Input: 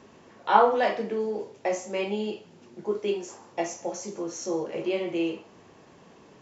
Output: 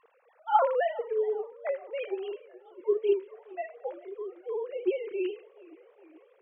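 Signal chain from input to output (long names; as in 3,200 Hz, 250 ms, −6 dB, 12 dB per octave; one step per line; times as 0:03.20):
three sine waves on the formant tracks
0:01.52–0:02.80: low-pass that shuts in the quiet parts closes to 460 Hz, open at −24.5 dBFS
feedback echo with a swinging delay time 424 ms, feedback 67%, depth 157 cents, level −23 dB
level −3 dB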